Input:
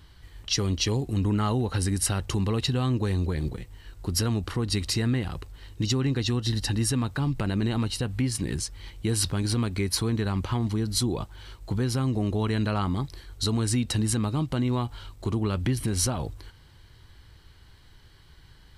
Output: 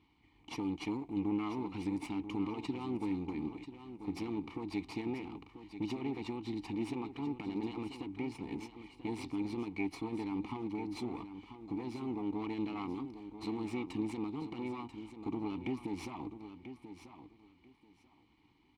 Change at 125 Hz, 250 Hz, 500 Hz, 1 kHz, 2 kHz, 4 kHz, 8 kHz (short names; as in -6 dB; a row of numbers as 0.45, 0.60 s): -22.0 dB, -8.0 dB, -10.0 dB, -8.5 dB, -11.5 dB, -20.5 dB, under -25 dB